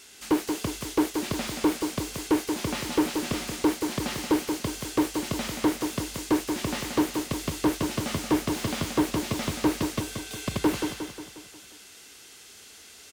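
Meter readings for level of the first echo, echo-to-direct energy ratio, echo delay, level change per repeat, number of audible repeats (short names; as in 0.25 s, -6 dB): -6.5 dB, -5.0 dB, 0.179 s, -5.5 dB, 6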